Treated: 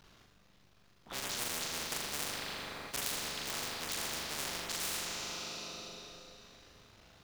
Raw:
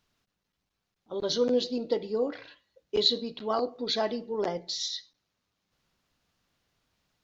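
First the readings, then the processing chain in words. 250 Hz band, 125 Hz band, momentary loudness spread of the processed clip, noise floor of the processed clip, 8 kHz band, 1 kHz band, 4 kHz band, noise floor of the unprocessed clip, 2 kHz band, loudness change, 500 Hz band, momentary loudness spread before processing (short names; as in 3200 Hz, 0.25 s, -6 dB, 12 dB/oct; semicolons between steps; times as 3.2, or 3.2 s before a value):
-15.0 dB, -2.5 dB, 12 LU, -65 dBFS, n/a, -6.0 dB, -6.5 dB, -83 dBFS, +6.5 dB, -7.5 dB, -18.5 dB, 9 LU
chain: cycle switcher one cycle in 3, muted; in parallel at -1 dB: limiter -21.5 dBFS, peak gain reduction 10.5 dB; on the sum: high shelf 4900 Hz -6 dB; on a send: flutter echo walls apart 7 m, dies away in 0.56 s; on the sum: Schroeder reverb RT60 2.9 s, combs from 31 ms, DRR 9.5 dB; spectral compressor 10:1; gain -6 dB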